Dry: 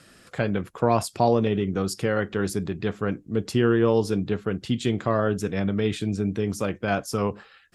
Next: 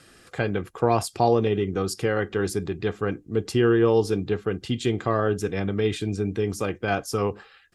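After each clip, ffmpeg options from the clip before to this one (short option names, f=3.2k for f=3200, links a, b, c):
-af "aecho=1:1:2.5:0.36"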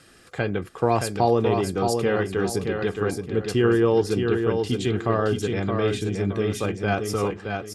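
-af "aecho=1:1:621|1242|1863|2484:0.562|0.174|0.054|0.0168"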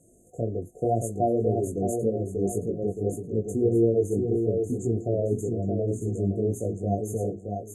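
-af "afftfilt=real='re*(1-between(b*sr/4096,740,6200))':imag='im*(1-between(b*sr/4096,740,6200))':win_size=4096:overlap=0.75,flanger=delay=17.5:depth=3:speed=1.8"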